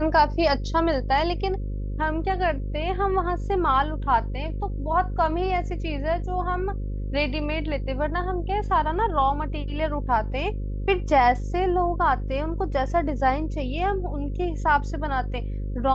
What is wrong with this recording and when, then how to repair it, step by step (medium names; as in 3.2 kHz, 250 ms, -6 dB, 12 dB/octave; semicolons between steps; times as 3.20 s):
buzz 50 Hz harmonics 11 -29 dBFS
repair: de-hum 50 Hz, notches 11